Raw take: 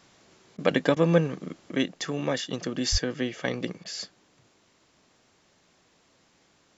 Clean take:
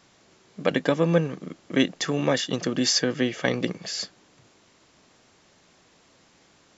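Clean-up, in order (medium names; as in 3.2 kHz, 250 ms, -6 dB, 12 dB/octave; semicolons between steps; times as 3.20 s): 2.91–3.03 s: high-pass 140 Hz 24 dB/octave; interpolate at 0.57/0.95/3.84 s, 13 ms; 1.71 s: gain correction +5 dB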